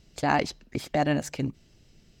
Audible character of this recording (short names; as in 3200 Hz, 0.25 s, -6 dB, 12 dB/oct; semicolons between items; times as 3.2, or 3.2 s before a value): noise floor -60 dBFS; spectral tilt -4.5 dB/oct